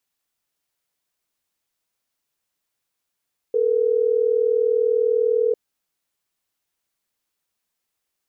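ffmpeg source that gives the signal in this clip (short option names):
-f lavfi -i "aevalsrc='0.112*(sin(2*PI*440*t)+sin(2*PI*480*t))*clip(min(mod(t,6),2-mod(t,6))/0.005,0,1)':d=3.12:s=44100"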